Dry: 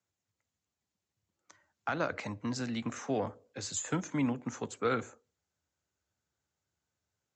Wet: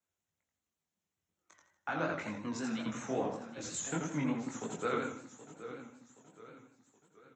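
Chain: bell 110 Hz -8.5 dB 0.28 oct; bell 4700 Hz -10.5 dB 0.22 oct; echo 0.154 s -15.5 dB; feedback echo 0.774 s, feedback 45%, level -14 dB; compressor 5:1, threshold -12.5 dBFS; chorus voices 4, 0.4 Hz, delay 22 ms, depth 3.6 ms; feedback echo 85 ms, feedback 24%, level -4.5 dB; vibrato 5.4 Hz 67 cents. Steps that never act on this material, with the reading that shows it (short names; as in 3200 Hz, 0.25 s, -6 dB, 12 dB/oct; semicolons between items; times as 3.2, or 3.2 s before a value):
compressor, threshold -12.5 dBFS: input peak -19.5 dBFS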